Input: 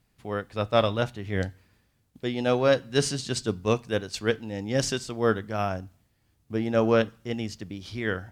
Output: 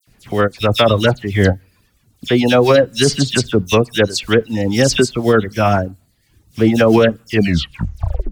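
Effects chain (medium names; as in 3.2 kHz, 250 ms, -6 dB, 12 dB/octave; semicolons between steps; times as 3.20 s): tape stop on the ending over 1.10 s; reverb removal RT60 0.65 s; in parallel at -12 dB: short-mantissa float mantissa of 2-bit; on the sum: rotary cabinet horn 7.5 Hz; phase dispersion lows, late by 74 ms, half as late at 2.9 kHz; loudness maximiser +18 dB; trim -1 dB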